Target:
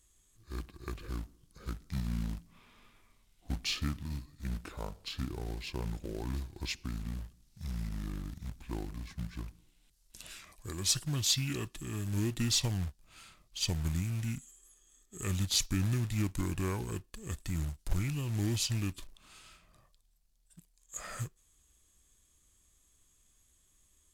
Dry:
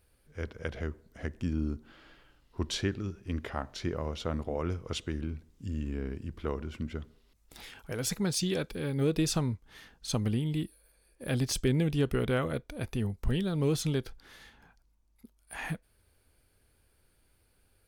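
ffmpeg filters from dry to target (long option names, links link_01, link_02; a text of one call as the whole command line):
ffmpeg -i in.wav -af "bass=frequency=250:gain=6,treble=frequency=4000:gain=14,acrusher=bits=4:mode=log:mix=0:aa=0.000001,asetrate=32667,aresample=44100,volume=-8dB" out.wav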